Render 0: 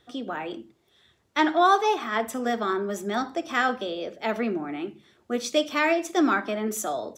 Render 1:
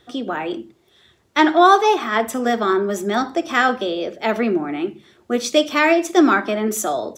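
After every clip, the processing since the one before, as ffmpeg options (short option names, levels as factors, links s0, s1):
-af "equalizer=f=360:w=6.8:g=4,volume=2.24"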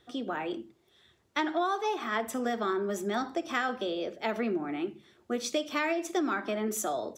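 -af "acompressor=threshold=0.141:ratio=6,volume=0.355"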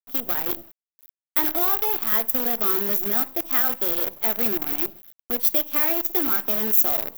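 -af "acrusher=bits=6:dc=4:mix=0:aa=0.000001,aexciter=amount=11.5:drive=8.1:freq=12000"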